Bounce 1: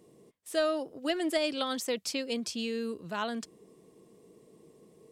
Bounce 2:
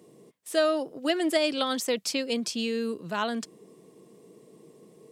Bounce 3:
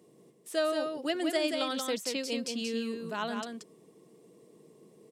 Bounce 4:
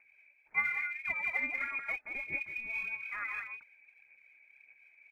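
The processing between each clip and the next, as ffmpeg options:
-af "highpass=f=110:w=0.5412,highpass=f=110:w=1.3066,volume=1.68"
-af "aecho=1:1:180:0.562,volume=0.531"
-af "lowpass=f=2300:t=q:w=0.5098,lowpass=f=2300:t=q:w=0.6013,lowpass=f=2300:t=q:w=0.9,lowpass=f=2300:t=q:w=2.563,afreqshift=-2700,aphaser=in_gain=1:out_gain=1:delay=3.5:decay=0.46:speed=1.7:type=sinusoidal,volume=0.562"

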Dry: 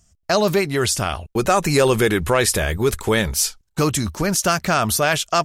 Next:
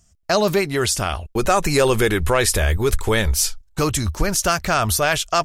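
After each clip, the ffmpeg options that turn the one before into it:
-af "asubboost=boost=7.5:cutoff=65"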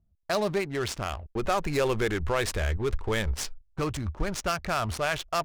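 -af "adynamicsmooth=sensitivity=2.5:basefreq=560,volume=0.355"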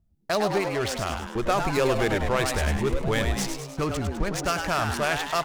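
-filter_complex "[0:a]asplit=8[s0][s1][s2][s3][s4][s5][s6][s7];[s1]adelay=102,afreqshift=130,volume=0.473[s8];[s2]adelay=204,afreqshift=260,volume=0.26[s9];[s3]adelay=306,afreqshift=390,volume=0.143[s10];[s4]adelay=408,afreqshift=520,volume=0.0785[s11];[s5]adelay=510,afreqshift=650,volume=0.0432[s12];[s6]adelay=612,afreqshift=780,volume=0.0237[s13];[s7]adelay=714,afreqshift=910,volume=0.013[s14];[s0][s8][s9][s10][s11][s12][s13][s14]amix=inputs=8:normalize=0,volume=1.26"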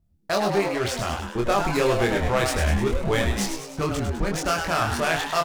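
-filter_complex "[0:a]asplit=2[s0][s1];[s1]adelay=25,volume=0.708[s2];[s0][s2]amix=inputs=2:normalize=0"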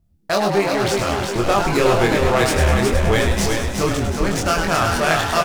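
-af "aecho=1:1:367|734|1101|1468|1835|2202:0.562|0.27|0.13|0.0622|0.0299|0.0143,volume=1.68"

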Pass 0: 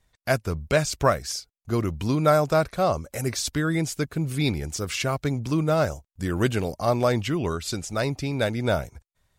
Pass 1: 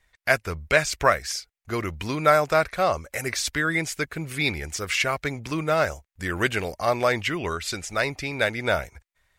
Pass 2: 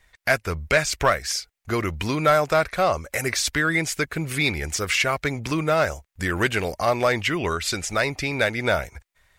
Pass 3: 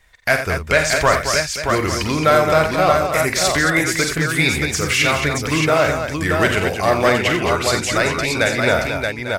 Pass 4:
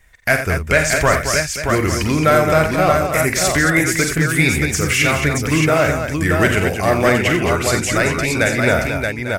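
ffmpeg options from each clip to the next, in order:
-af "equalizer=f=125:t=o:w=1:g=-7,equalizer=f=250:t=o:w=1:g=-5,equalizer=f=2000:t=o:w=1:g=10"
-filter_complex "[0:a]asplit=2[s0][s1];[s1]acompressor=threshold=0.0282:ratio=6,volume=1.12[s2];[s0][s2]amix=inputs=2:normalize=0,asoftclip=type=tanh:threshold=0.398"
-af "aecho=1:1:45|49|89|221|626|848:0.299|0.282|0.335|0.422|0.596|0.224,volume=1.5"
-af "equalizer=f=500:t=o:w=1:g=-3,equalizer=f=1000:t=o:w=1:g=-6,equalizer=f=4000:t=o:w=1:g=-9,volume=1.68"

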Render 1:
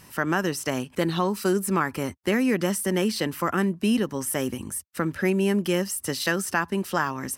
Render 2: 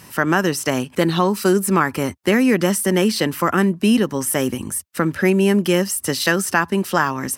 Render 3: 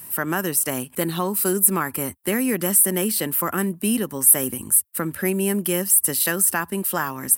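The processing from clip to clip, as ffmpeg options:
-af "highpass=72,volume=2.24"
-af "aexciter=amount=9.3:drive=3.2:freq=8300,volume=0.447"

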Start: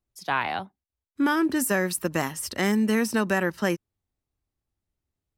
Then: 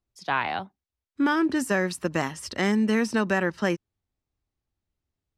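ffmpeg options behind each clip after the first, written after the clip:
-af "lowpass=6400"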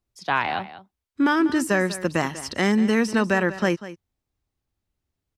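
-af "aecho=1:1:193:0.178,volume=1.41"

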